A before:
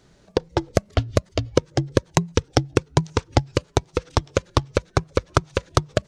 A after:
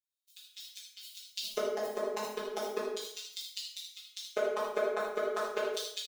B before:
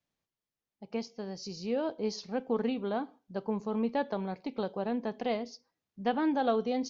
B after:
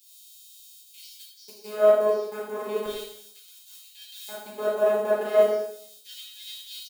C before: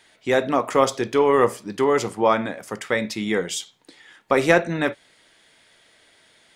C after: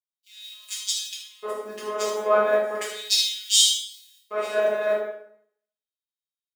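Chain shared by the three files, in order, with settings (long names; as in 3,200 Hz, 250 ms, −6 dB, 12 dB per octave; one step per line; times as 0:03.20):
background noise blue −52 dBFS
in parallel at +2 dB: downward compressor 4 to 1, threshold −33 dBFS
on the sum: leveller curve on the samples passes 3
output level in coarse steps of 21 dB
auto-filter high-pass square 0.35 Hz 500–3,500 Hz
phases set to zero 211 Hz
on a send: single-tap delay 79 ms −8 dB
on the sum: dense smooth reverb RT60 1.1 s, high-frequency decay 0.7×, DRR −6 dB
multiband upward and downward expander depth 100%
level −10 dB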